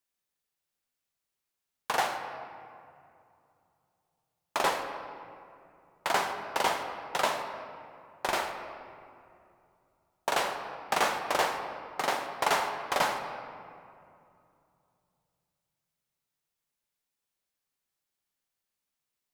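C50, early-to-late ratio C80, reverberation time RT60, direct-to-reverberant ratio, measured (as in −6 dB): 6.5 dB, 7.5 dB, 2.6 s, 4.5 dB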